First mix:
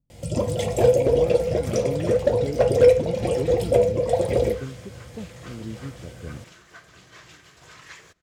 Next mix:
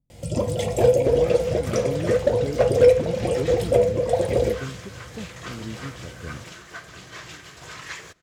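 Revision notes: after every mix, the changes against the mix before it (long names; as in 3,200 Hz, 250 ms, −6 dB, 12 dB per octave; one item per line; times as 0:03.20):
second sound +8.0 dB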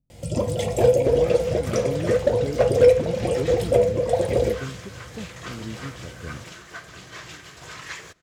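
nothing changed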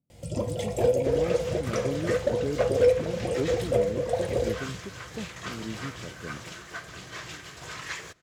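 speech: add high-pass filter 160 Hz
first sound −6.0 dB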